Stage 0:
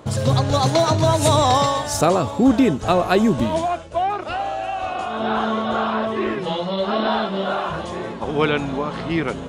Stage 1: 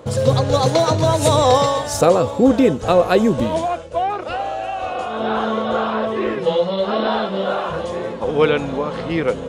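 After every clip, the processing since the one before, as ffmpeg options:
-af "equalizer=f=500:w=7.3:g=14"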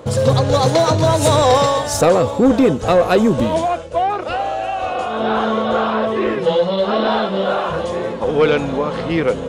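-af "acontrast=72,volume=-3.5dB"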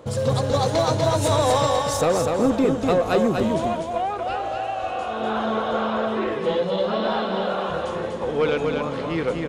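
-af "aecho=1:1:245|490|735|980:0.631|0.164|0.0427|0.0111,volume=-7.5dB"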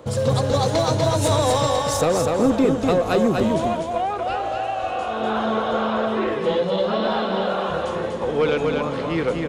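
-filter_complex "[0:a]acrossover=split=430|3000[a][b][c];[b]acompressor=threshold=-21dB:ratio=6[d];[a][d][c]amix=inputs=3:normalize=0,volume=2dB"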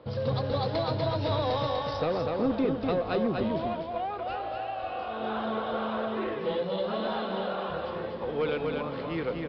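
-af "aresample=11025,aresample=44100,volume=-9dB"

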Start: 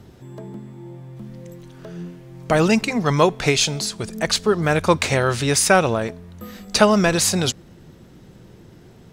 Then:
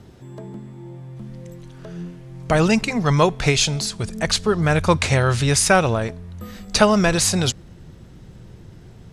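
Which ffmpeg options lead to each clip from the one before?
-af "lowpass=f=12k:w=0.5412,lowpass=f=12k:w=1.3066,asubboost=boost=3:cutoff=150"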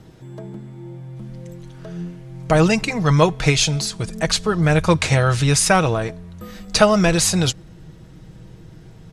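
-af "aecho=1:1:6.3:0.43"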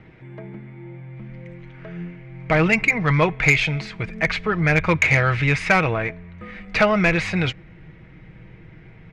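-af "lowpass=f=2.2k:t=q:w=5.9,acontrast=28,volume=-8dB"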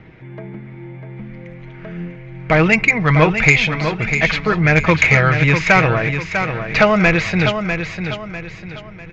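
-filter_complex "[0:a]asplit=2[a][b];[b]aecho=0:1:648|1296|1944|2592:0.422|0.156|0.0577|0.0214[c];[a][c]amix=inputs=2:normalize=0,aresample=16000,aresample=44100,volume=4.5dB"

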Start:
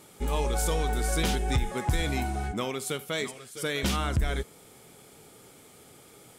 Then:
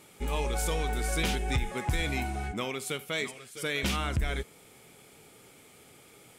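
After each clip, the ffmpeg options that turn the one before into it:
-af "equalizer=f=2.4k:t=o:w=0.72:g=6,volume=-3dB"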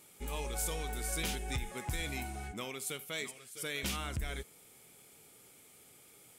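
-af "crystalizer=i=1.5:c=0,volume=-8.5dB"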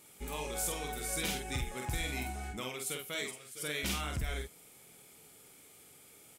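-filter_complex "[0:a]asplit=2[a][b];[b]adelay=47,volume=-3.5dB[c];[a][c]amix=inputs=2:normalize=0"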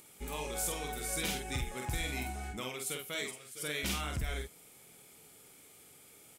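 -af "acompressor=mode=upward:threshold=-57dB:ratio=2.5"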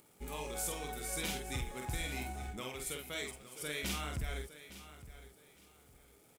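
-filter_complex "[0:a]acrossover=split=1500[a][b];[b]aeval=exprs='sgn(val(0))*max(abs(val(0))-0.00106,0)':c=same[c];[a][c]amix=inputs=2:normalize=0,aecho=1:1:861|1722|2583:0.188|0.0452|0.0108,volume=-2.5dB"

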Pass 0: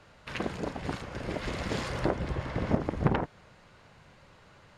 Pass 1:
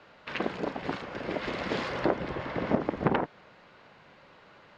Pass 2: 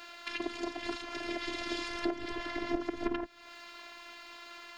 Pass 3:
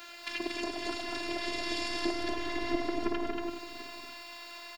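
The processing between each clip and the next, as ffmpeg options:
-filter_complex "[0:a]acrossover=split=180 5100:gain=0.178 1 0.0631[a][b][c];[a][b][c]amix=inputs=3:normalize=0,volume=3dB"
-filter_complex "[0:a]crystalizer=i=8.5:c=0,acrossover=split=280[a][b];[b]acompressor=threshold=-39dB:ratio=4[c];[a][c]amix=inputs=2:normalize=0,afftfilt=real='hypot(re,im)*cos(PI*b)':imag='0':win_size=512:overlap=0.75,volume=3.5dB"
-filter_complex "[0:a]asplit=2[a][b];[b]aecho=0:1:234:0.668[c];[a][c]amix=inputs=2:normalize=0,crystalizer=i=1:c=0,asplit=2[d][e];[e]aecho=0:1:102|186|694|742:0.376|0.316|0.112|0.168[f];[d][f]amix=inputs=2:normalize=0"

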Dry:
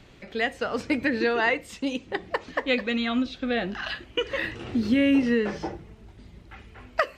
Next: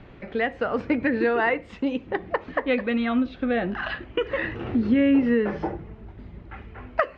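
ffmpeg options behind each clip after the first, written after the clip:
-filter_complex "[0:a]lowpass=1.9k,asplit=2[a][b];[b]acompressor=threshold=-32dB:ratio=6,volume=0dB[c];[a][c]amix=inputs=2:normalize=0"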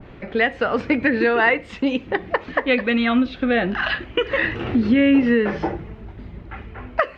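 -filter_complex "[0:a]asplit=2[a][b];[b]alimiter=limit=-16dB:level=0:latency=1:release=476,volume=-2dB[c];[a][c]amix=inputs=2:normalize=0,adynamicequalizer=threshold=0.02:dfrequency=1600:dqfactor=0.7:tfrequency=1600:tqfactor=0.7:attack=5:release=100:ratio=0.375:range=3:mode=boostabove:tftype=highshelf"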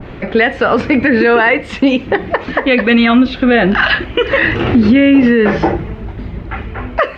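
-af "alimiter=level_in=13dB:limit=-1dB:release=50:level=0:latency=1,volume=-1dB"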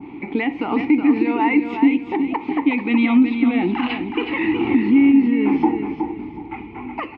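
-filter_complex "[0:a]asplit=3[a][b][c];[a]bandpass=f=300:t=q:w=8,volume=0dB[d];[b]bandpass=f=870:t=q:w=8,volume=-6dB[e];[c]bandpass=f=2.24k:t=q:w=8,volume=-9dB[f];[d][e][f]amix=inputs=3:normalize=0,alimiter=limit=-13dB:level=0:latency=1:release=464,aecho=1:1:369|738|1107:0.447|0.121|0.0326,volume=6dB"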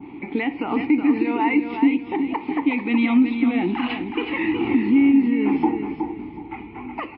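-af "volume=-2dB" -ar 12000 -c:a libmp3lame -b:a 24k

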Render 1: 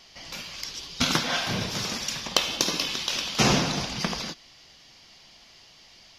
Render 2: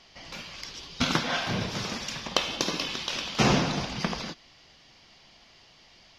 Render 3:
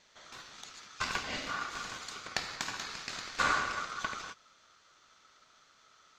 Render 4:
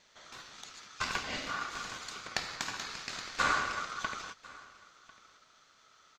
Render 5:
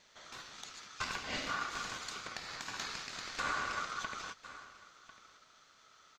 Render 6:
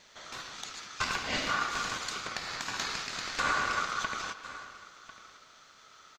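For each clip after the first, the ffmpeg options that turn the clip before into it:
-af "aemphasis=mode=reproduction:type=50kf"
-af "asubboost=boost=3:cutoff=170,aeval=exprs='val(0)*sin(2*PI*1300*n/s)':c=same,volume=-6dB"
-af "aecho=1:1:1047:0.0794"
-af "alimiter=level_in=0.5dB:limit=-24dB:level=0:latency=1:release=218,volume=-0.5dB"
-filter_complex "[0:a]asplit=2[a][b];[b]adelay=110,highpass=300,lowpass=3.4k,asoftclip=type=hard:threshold=-34.5dB,volume=-10dB[c];[a][c]amix=inputs=2:normalize=0,volume=6.5dB"

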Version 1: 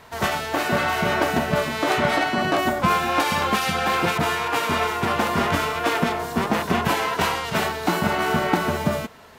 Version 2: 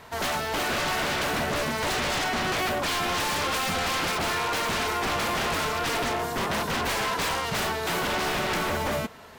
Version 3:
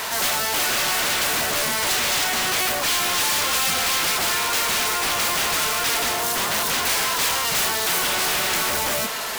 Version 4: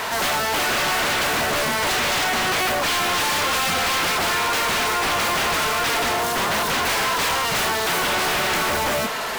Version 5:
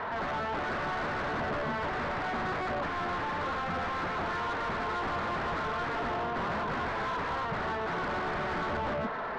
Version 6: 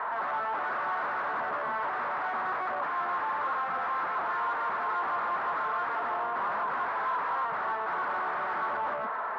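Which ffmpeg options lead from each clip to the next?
-af "aeval=exprs='0.0794*(abs(mod(val(0)/0.0794+3,4)-2)-1)':c=same"
-filter_complex "[0:a]asplit=2[a][b];[b]highpass=f=720:p=1,volume=31dB,asoftclip=type=tanh:threshold=-22dB[c];[a][c]amix=inputs=2:normalize=0,lowpass=f=7.3k:p=1,volume=-6dB,crystalizer=i=3:c=0,volume=-1dB"
-af "highshelf=f=3.8k:g=-11,volume=4.5dB"
-filter_complex "[0:a]lowpass=f=1.7k:w=0.5412,lowpass=f=1.7k:w=1.3066,acrossover=split=270[a][b];[b]asoftclip=type=tanh:threshold=-25dB[c];[a][c]amix=inputs=2:normalize=0,volume=-5dB"
-af "bandpass=f=1.1k:t=q:w=1.6:csg=0,volume=5dB"

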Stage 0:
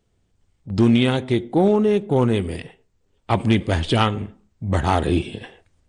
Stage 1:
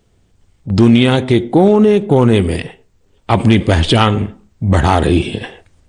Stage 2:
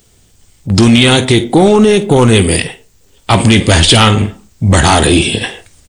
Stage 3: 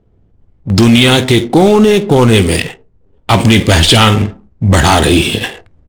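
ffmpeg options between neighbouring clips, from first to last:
-af "alimiter=level_in=12dB:limit=-1dB:release=50:level=0:latency=1,volume=-1dB"
-af "aecho=1:1:18|50:0.168|0.15,crystalizer=i=4.5:c=0,apsyclip=6dB,volume=-1.5dB"
-af "adynamicsmooth=sensitivity=4.5:basefreq=640"

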